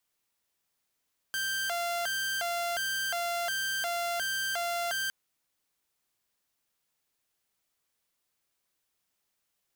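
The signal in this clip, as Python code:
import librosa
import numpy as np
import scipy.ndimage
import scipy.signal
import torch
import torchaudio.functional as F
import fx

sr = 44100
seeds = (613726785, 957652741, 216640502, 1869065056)

y = fx.siren(sr, length_s=3.76, kind='hi-lo', low_hz=691.0, high_hz=1570.0, per_s=1.4, wave='saw', level_db=-27.0)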